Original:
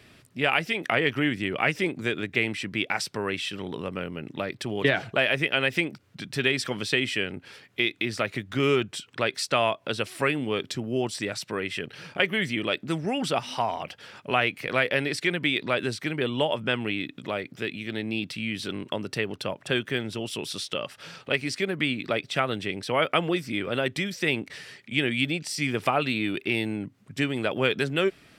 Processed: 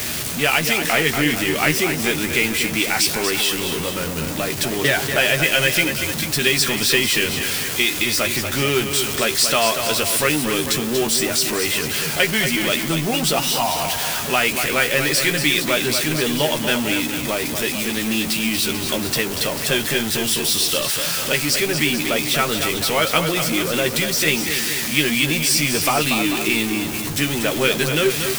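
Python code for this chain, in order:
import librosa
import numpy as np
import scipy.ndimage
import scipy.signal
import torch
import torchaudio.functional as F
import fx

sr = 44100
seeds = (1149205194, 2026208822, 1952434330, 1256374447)

p1 = x + 0.5 * 10.0 ** (-26.5 / 20.0) * np.sign(x)
p2 = fx.doubler(p1, sr, ms=13.0, db=-6.5)
p3 = fx.quant_dither(p2, sr, seeds[0], bits=6, dither='triangular')
p4 = p2 + (p3 * librosa.db_to_amplitude(-10.0))
p5 = fx.high_shelf(p4, sr, hz=4300.0, db=12.0)
p6 = p5 + fx.echo_multitap(p5, sr, ms=(237, 442), db=(-7.5, -12.0), dry=0)
y = p6 * librosa.db_to_amplitude(-1.5)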